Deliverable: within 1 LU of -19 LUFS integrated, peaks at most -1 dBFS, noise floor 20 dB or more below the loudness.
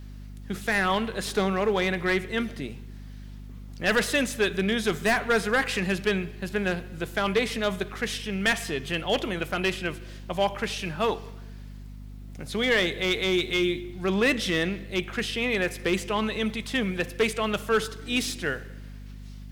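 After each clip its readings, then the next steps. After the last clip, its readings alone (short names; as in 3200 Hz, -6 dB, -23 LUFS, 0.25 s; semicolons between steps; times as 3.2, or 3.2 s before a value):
clipped 0.8%; flat tops at -16.5 dBFS; hum 50 Hz; harmonics up to 250 Hz; hum level -39 dBFS; loudness -26.5 LUFS; peak -16.5 dBFS; loudness target -19.0 LUFS
-> clip repair -16.5 dBFS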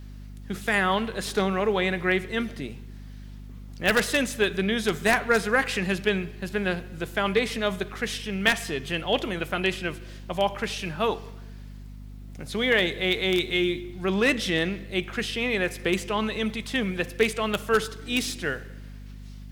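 clipped 0.0%; hum 50 Hz; harmonics up to 250 Hz; hum level -39 dBFS
-> notches 50/100/150/200/250 Hz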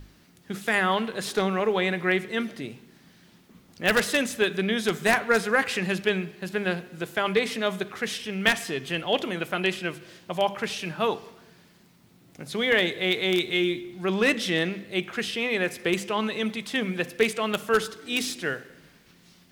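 hum none; loudness -26.0 LUFS; peak -7.0 dBFS; loudness target -19.0 LUFS
-> gain +7 dB; limiter -1 dBFS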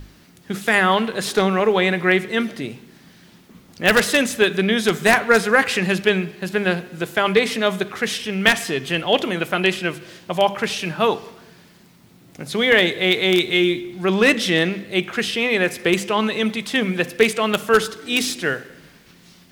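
loudness -19.0 LUFS; peak -1.0 dBFS; noise floor -50 dBFS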